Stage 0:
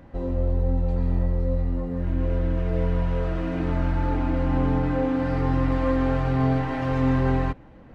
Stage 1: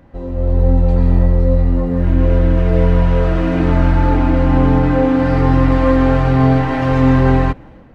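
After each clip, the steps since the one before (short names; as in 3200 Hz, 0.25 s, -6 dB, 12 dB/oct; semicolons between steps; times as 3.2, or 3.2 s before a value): AGC gain up to 11.5 dB; gain +1 dB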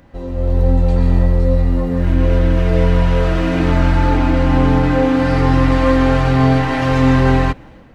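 high shelf 2300 Hz +10 dB; gain -1 dB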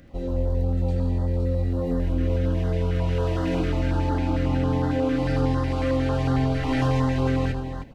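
compressor, threshold -17 dBFS, peak gain reduction 9 dB; tapped delay 78/310 ms -10.5/-9 dB; stepped notch 11 Hz 920–2400 Hz; gain -2 dB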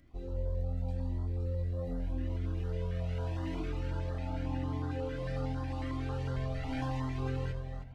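on a send at -16 dB: reverb RT60 2.9 s, pre-delay 0.191 s; on the sum: cascading flanger rising 0.85 Hz; gain -8.5 dB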